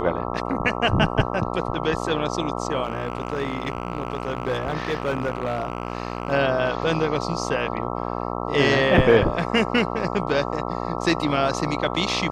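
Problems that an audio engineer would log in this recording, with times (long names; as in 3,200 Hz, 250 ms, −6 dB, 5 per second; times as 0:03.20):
mains buzz 60 Hz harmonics 22 −28 dBFS
0:02.83–0:06.33: clipping −19 dBFS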